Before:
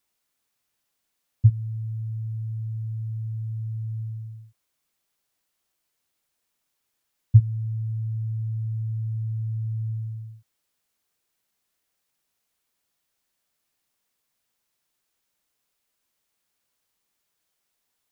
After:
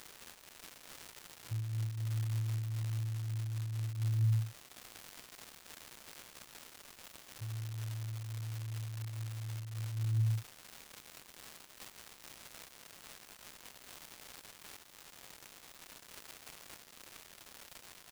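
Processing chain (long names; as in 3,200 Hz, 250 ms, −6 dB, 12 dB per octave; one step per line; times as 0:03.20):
comb filter 5.7 ms
compressor whose output falls as the input rises −38 dBFS, ratio −0.5
surface crackle 350 per second −39 dBFS
amplitude modulation by smooth noise, depth 65%
level +6.5 dB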